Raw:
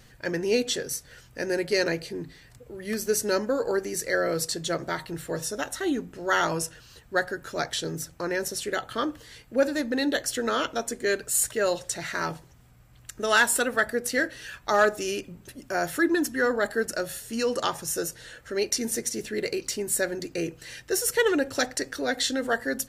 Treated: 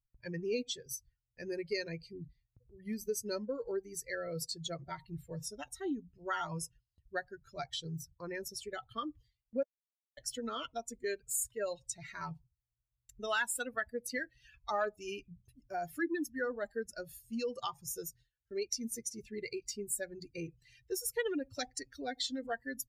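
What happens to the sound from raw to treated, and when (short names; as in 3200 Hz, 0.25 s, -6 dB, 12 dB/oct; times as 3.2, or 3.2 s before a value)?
9.63–10.17 mute
whole clip: per-bin expansion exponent 2; gate with hold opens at -56 dBFS; compressor 2:1, threshold -38 dBFS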